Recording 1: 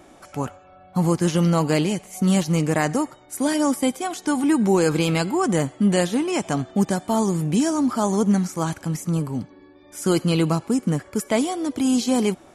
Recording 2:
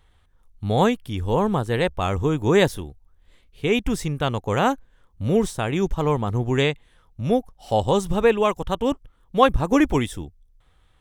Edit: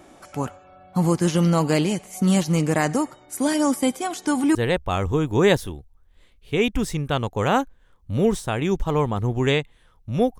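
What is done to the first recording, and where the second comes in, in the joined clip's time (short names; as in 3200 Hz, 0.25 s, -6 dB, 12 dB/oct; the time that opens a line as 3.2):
recording 1
4.55 switch to recording 2 from 1.66 s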